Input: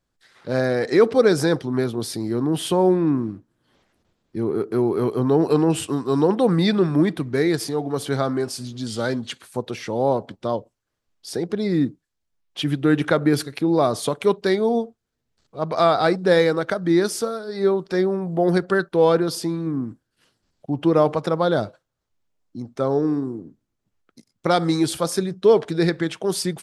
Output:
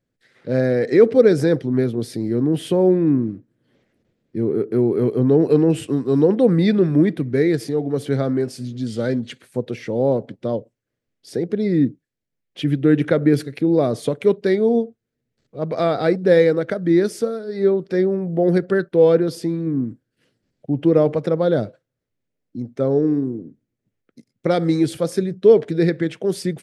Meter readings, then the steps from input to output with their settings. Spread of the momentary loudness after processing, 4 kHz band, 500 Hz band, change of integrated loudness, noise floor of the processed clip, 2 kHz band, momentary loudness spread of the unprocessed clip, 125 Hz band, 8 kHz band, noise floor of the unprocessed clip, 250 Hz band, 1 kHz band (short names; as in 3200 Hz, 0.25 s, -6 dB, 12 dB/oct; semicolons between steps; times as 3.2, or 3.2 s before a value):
12 LU, -6.0 dB, +2.5 dB, +2.5 dB, -80 dBFS, -2.5 dB, 12 LU, +3.0 dB, n/a, -78 dBFS, +3.0 dB, -6.0 dB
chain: graphic EQ 125/250/500/1000/2000 Hz +10/+8/+10/-6/+8 dB; gain -7.5 dB